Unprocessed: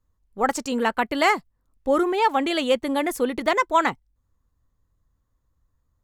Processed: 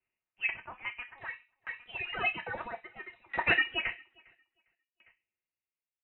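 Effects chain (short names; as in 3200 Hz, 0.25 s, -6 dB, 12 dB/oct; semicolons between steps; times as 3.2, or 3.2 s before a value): steep high-pass 1300 Hz 36 dB/oct; high shelf 3000 Hz +8 dB; vocal rider 0.5 s; 1.18–3.57 phaser 1.4 Hz, delay 1.6 ms, feedback 77%; feedback echo 0.404 s, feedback 39%, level -21 dB; FDN reverb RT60 0.4 s, low-frequency decay 1.2×, high-frequency decay 0.45×, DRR 1 dB; inverted band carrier 3900 Hz; dB-ramp tremolo decaying 0.6 Hz, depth 28 dB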